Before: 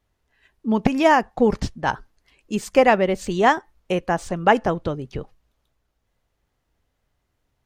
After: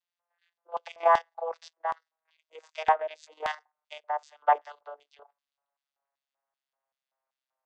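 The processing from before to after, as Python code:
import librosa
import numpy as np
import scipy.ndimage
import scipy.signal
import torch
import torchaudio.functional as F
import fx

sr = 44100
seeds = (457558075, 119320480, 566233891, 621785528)

y = fx.vocoder_glide(x, sr, note=53, semitones=-5)
y = scipy.signal.sosfilt(scipy.signal.butter(6, 570.0, 'highpass', fs=sr, output='sos'), y)
y = fx.level_steps(y, sr, step_db=10)
y = fx.high_shelf(y, sr, hz=5900.0, db=7.0)
y = fx.filter_lfo_bandpass(y, sr, shape='square', hz=2.6, low_hz=930.0, high_hz=4000.0, q=1.3)
y = y * librosa.db_to_amplitude(3.5)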